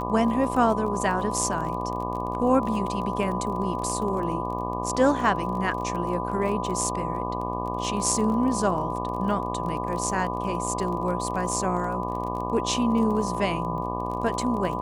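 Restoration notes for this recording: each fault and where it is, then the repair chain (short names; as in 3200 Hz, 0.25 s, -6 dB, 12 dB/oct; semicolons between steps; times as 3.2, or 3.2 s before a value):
buzz 60 Hz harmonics 20 -31 dBFS
crackle 25/s -32 dBFS
tone 1000 Hz -31 dBFS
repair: de-click; de-hum 60 Hz, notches 20; notch 1000 Hz, Q 30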